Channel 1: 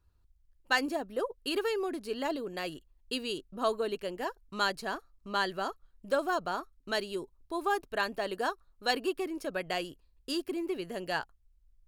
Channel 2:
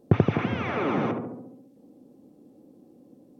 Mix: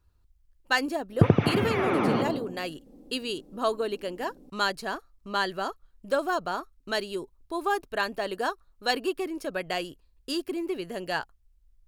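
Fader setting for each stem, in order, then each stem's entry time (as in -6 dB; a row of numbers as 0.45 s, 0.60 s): +3.0 dB, +1.0 dB; 0.00 s, 1.10 s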